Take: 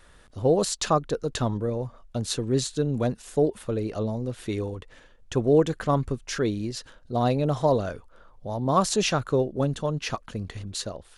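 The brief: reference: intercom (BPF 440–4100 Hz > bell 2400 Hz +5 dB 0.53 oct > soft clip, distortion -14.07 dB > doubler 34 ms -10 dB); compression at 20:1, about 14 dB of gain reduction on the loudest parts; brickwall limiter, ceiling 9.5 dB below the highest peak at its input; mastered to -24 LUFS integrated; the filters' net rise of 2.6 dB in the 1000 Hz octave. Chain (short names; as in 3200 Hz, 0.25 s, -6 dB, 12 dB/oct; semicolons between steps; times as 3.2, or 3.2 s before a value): bell 1000 Hz +3.5 dB; compressor 20:1, threshold -28 dBFS; limiter -25 dBFS; BPF 440–4100 Hz; bell 2400 Hz +5 dB 0.53 oct; soft clip -32.5 dBFS; doubler 34 ms -10 dB; gain +17.5 dB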